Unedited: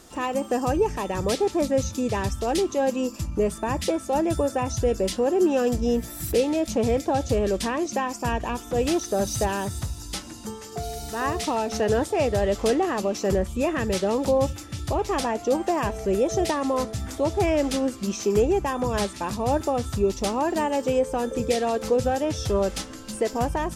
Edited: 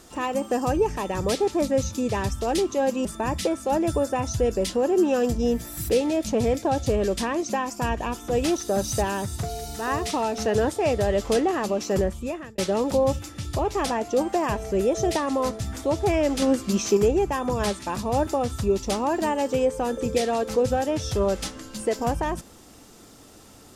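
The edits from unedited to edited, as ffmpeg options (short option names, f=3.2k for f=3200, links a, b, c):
-filter_complex "[0:a]asplit=6[a][b][c][d][e][f];[a]atrim=end=3.052[g];[b]atrim=start=3.478:end=9.862[h];[c]atrim=start=10.768:end=13.92,asetpts=PTS-STARTPTS,afade=t=out:st=2.572:d=0.58[i];[d]atrim=start=13.92:end=17.762,asetpts=PTS-STARTPTS,afade=t=in:d=0.004:c=hsin[j];[e]atrim=start=17.758:end=18.312,asetpts=PTS-STARTPTS,volume=4dB[k];[f]atrim=start=18.308[l];[g][h]acrossfade=d=0.004:c1=hsin:c2=hsin[m];[i][j]concat=n=2:v=0:a=1[n];[m][n]acrossfade=d=0.004:c1=hsin:c2=hsin[o];[o][k]acrossfade=d=0.004:c1=hsin:c2=hsin[p];[p][l]acrossfade=d=0.004:c1=hsin:c2=hsin"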